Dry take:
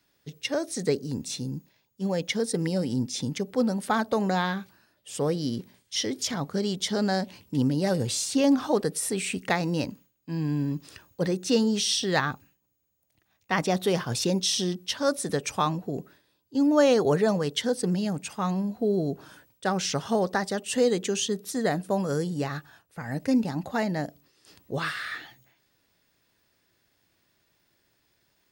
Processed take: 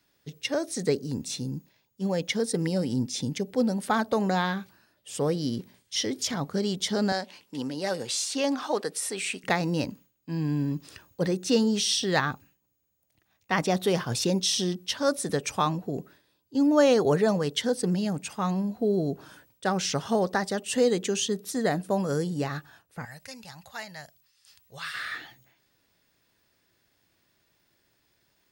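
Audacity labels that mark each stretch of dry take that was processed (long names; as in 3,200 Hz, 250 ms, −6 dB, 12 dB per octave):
3.190000	3.770000	parametric band 1,200 Hz −6.5 dB 0.6 octaves
7.120000	9.440000	meter weighting curve A
23.050000	24.940000	guitar amp tone stack bass-middle-treble 10-0-10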